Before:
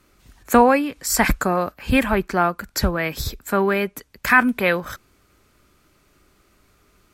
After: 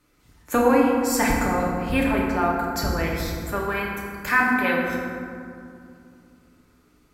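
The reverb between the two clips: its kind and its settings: FDN reverb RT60 2.4 s, low-frequency decay 1.45×, high-frequency decay 0.45×, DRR -3.5 dB; trim -8 dB

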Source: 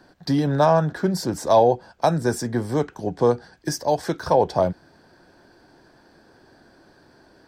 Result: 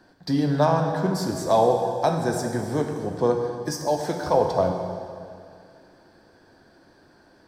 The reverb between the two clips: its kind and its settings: plate-style reverb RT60 2.3 s, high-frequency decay 0.9×, DRR 3 dB; trim -3.5 dB

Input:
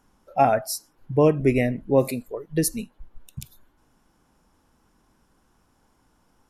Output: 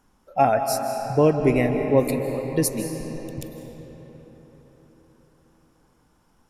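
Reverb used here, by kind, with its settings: algorithmic reverb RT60 4.6 s, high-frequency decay 0.6×, pre-delay 115 ms, DRR 5 dB

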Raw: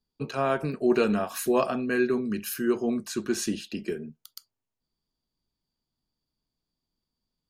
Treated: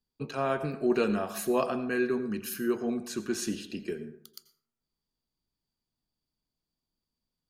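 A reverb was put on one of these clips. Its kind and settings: plate-style reverb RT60 0.7 s, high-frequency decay 0.45×, pre-delay 75 ms, DRR 12 dB; trim -3.5 dB

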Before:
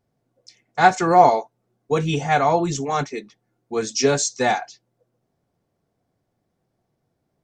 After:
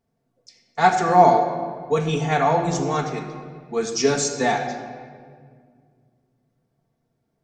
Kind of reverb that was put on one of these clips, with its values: simulated room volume 3200 m³, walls mixed, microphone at 1.6 m; trim -3 dB

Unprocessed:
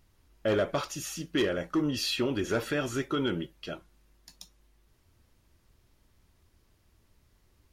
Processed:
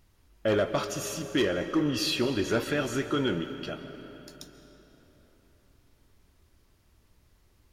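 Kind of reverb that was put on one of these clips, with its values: algorithmic reverb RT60 3.9 s, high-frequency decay 0.7×, pre-delay 100 ms, DRR 9.5 dB; trim +1.5 dB

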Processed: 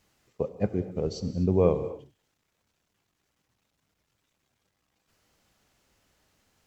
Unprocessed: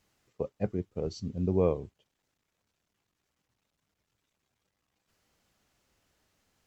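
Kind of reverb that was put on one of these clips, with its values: gated-style reverb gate 280 ms flat, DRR 11 dB; trim +4 dB

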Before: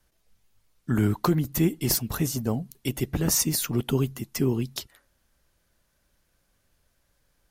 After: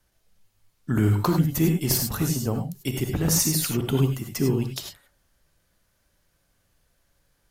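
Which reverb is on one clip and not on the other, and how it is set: gated-style reverb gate 120 ms rising, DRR 3.5 dB

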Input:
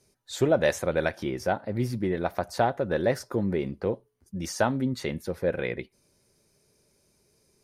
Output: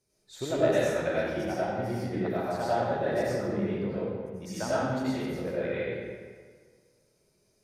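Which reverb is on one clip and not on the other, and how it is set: algorithmic reverb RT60 1.7 s, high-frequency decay 0.7×, pre-delay 55 ms, DRR -9.5 dB; trim -12 dB

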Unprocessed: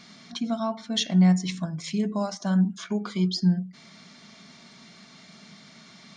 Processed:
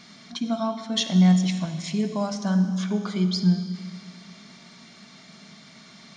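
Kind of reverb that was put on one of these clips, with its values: algorithmic reverb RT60 2.3 s, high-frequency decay 1×, pre-delay 15 ms, DRR 8.5 dB; trim +1 dB

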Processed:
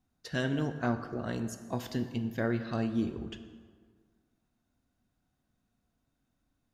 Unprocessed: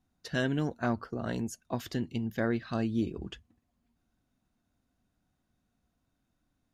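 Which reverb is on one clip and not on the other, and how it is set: plate-style reverb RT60 1.7 s, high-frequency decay 0.6×, DRR 8 dB; trim -1.5 dB

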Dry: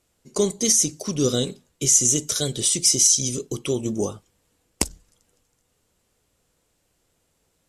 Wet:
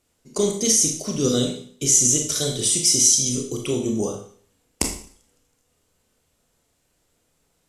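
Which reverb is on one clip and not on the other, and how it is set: Schroeder reverb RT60 0.5 s, combs from 25 ms, DRR 2 dB; trim -1 dB

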